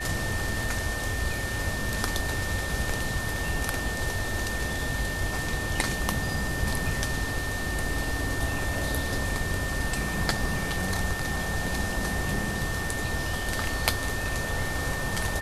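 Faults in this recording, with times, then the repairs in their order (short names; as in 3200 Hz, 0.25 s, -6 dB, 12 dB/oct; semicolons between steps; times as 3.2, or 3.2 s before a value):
tone 1800 Hz -33 dBFS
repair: notch 1800 Hz, Q 30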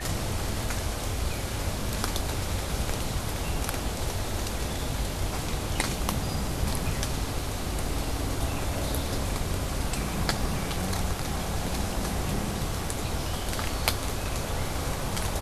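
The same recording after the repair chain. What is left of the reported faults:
none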